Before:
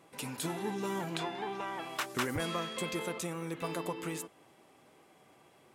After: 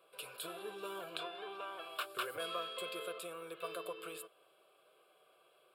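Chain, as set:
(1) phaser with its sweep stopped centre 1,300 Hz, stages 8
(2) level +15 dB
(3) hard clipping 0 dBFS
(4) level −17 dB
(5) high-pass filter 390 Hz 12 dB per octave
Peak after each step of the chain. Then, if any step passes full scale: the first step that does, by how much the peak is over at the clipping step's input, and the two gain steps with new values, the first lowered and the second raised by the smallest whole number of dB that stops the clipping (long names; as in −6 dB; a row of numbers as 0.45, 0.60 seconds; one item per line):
−18.5, −3.5, −3.5, −20.5, −21.0 dBFS
no step passes full scale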